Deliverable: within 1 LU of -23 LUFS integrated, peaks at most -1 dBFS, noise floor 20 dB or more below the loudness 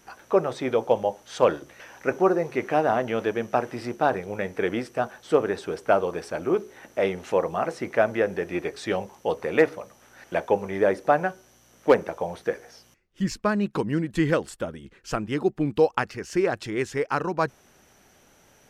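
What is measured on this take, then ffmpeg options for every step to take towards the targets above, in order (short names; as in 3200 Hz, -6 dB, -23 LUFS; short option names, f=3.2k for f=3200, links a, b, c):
loudness -26.0 LUFS; peak -7.5 dBFS; loudness target -23.0 LUFS
-> -af "volume=3dB"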